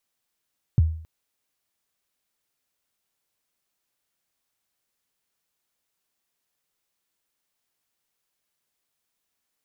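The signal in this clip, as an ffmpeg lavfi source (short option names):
-f lavfi -i "aevalsrc='0.282*pow(10,-3*t/0.52)*sin(2*PI*(150*0.023/log(80/150)*(exp(log(80/150)*min(t,0.023)/0.023)-1)+80*max(t-0.023,0)))':d=0.27:s=44100"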